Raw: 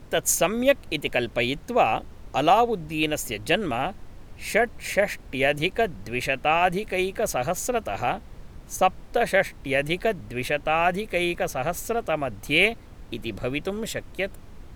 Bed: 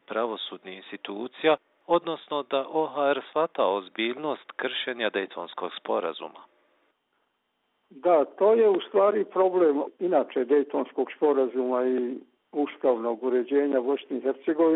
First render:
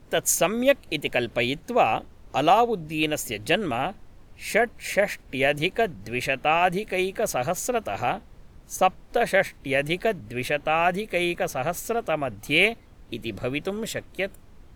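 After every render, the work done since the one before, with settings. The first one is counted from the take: noise print and reduce 6 dB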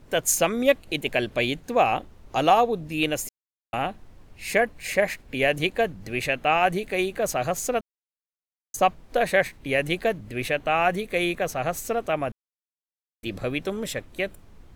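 3.29–3.73 mute; 7.81–8.74 mute; 12.32–13.23 mute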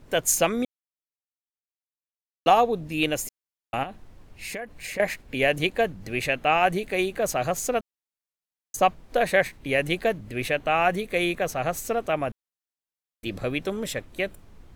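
0.65–2.46 mute; 3.83–5 compressor, threshold -31 dBFS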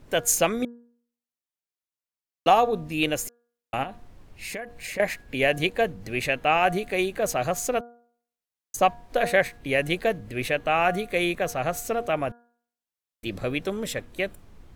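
de-hum 237.6 Hz, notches 7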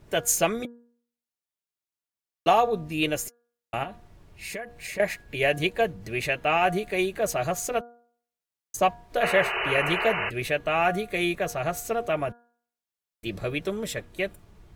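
9.22–10.3 painted sound noise 350–3000 Hz -27 dBFS; notch comb 260 Hz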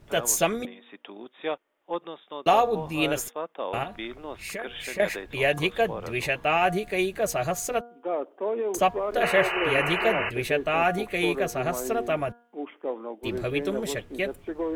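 add bed -8.5 dB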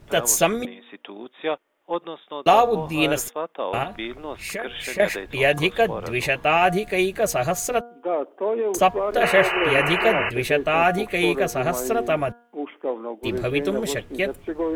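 gain +4.5 dB

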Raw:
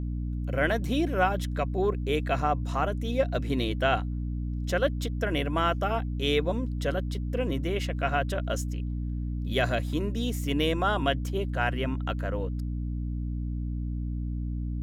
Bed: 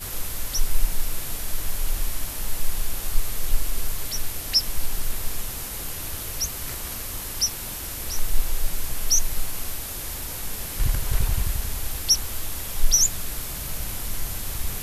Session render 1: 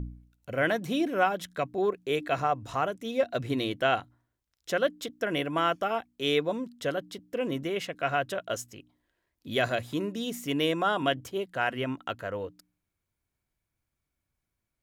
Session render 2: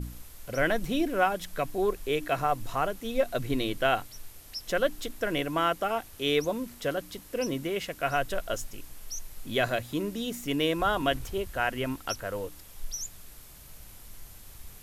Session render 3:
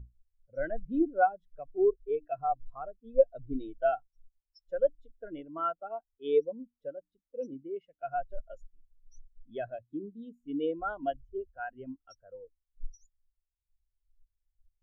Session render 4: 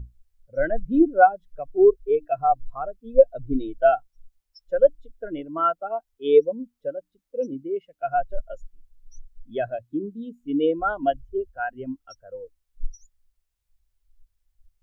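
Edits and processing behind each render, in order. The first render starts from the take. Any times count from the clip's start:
de-hum 60 Hz, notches 5
add bed -18 dB
spectral expander 2.5:1
gain +10 dB; limiter -3 dBFS, peak gain reduction 2.5 dB

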